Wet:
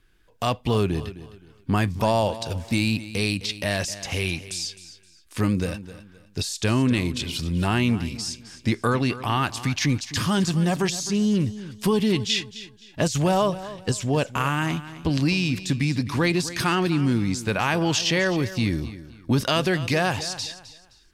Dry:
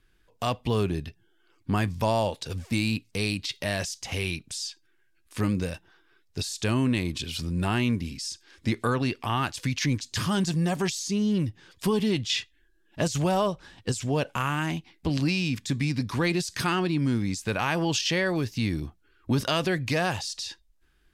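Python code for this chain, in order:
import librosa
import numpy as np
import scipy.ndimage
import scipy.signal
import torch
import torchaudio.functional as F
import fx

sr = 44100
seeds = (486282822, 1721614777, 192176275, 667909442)

y = fx.echo_feedback(x, sr, ms=260, feedback_pct=29, wet_db=-15)
y = y * librosa.db_to_amplitude(3.5)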